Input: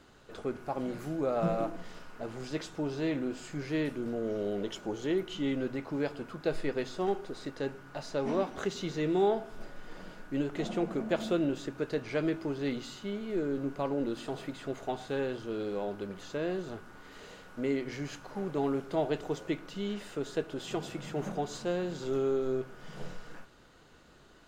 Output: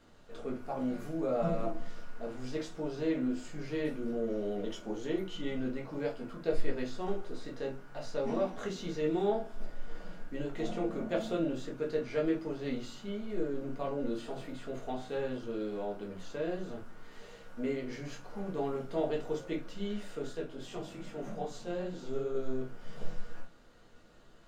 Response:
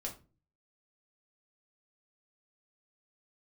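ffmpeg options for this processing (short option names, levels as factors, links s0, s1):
-filter_complex "[0:a]asettb=1/sr,asplit=3[s0][s1][s2];[s0]atrim=end=20.324[s3];[s1]atrim=start=20.32:end=22.35,asetpts=PTS-STARTPTS,afade=t=in:d=0.004:c=qsin,afade=t=out:st=2.026:d=0.004:c=qsin,flanger=delay=15.5:depth=7.4:speed=2.5[s4];[s2]atrim=start=22.346[s5];[s3][s4]acrossfade=d=0.004:c1=hsin:c2=qsin[s6];[s6][s5]acrossfade=d=0.004:c1=qsin:c2=hsin[s7];[1:a]atrim=start_sample=2205,atrim=end_sample=3528[s8];[s7][s8]afir=irnorm=-1:irlink=0,volume=0.75"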